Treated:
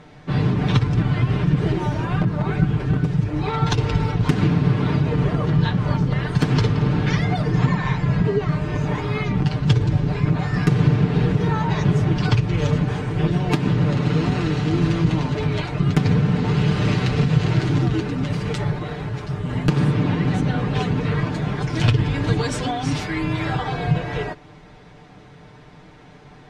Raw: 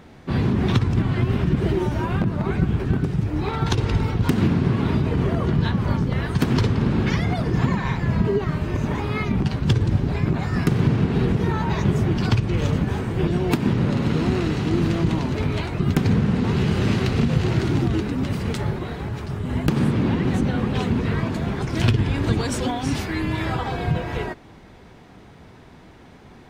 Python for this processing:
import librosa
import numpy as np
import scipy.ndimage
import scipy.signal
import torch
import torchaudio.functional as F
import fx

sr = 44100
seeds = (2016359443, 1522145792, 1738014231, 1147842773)

y = scipy.signal.sosfilt(scipy.signal.butter(2, 7800.0, 'lowpass', fs=sr, output='sos'), x)
y = fx.peak_eq(y, sr, hz=290.0, db=-4.5, octaves=0.32)
y = y + 0.69 * np.pad(y, (int(6.7 * sr / 1000.0), 0))[:len(y)]